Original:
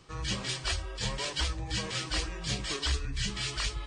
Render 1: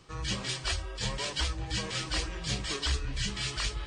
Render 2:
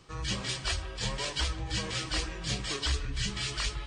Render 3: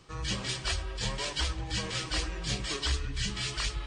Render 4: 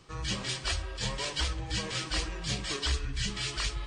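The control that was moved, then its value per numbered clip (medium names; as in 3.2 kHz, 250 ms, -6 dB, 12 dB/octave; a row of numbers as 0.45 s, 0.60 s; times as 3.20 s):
feedback echo behind a low-pass, time: 941 ms, 153 ms, 102 ms, 64 ms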